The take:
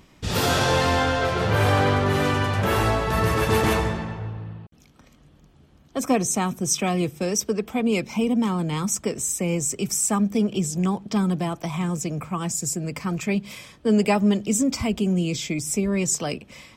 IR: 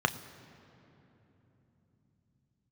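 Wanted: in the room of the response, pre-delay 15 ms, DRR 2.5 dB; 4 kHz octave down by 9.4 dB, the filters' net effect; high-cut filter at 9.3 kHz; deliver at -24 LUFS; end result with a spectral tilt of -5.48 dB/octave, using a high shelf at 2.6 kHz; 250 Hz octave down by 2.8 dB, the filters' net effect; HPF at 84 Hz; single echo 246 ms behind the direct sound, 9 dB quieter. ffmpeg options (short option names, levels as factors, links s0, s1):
-filter_complex "[0:a]highpass=84,lowpass=9300,equalizer=f=250:t=o:g=-3.5,highshelf=f=2600:g=-6,equalizer=f=4000:t=o:g=-7.5,aecho=1:1:246:0.355,asplit=2[s0][s1];[1:a]atrim=start_sample=2205,adelay=15[s2];[s1][s2]afir=irnorm=-1:irlink=0,volume=0.224[s3];[s0][s3]amix=inputs=2:normalize=0,volume=0.944"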